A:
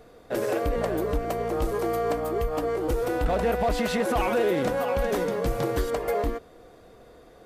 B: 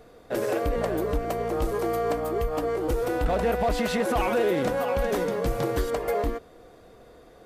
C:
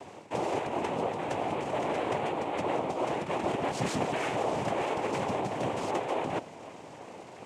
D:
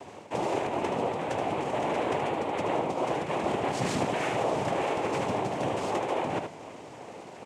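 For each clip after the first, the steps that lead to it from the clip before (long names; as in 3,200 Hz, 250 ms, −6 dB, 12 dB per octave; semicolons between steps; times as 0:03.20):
no processing that can be heard
reversed playback; downward compressor 12 to 1, threshold −33 dBFS, peak gain reduction 13.5 dB; reversed playback; cochlear-implant simulation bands 4; level +6 dB
single-tap delay 76 ms −6.5 dB; level +1 dB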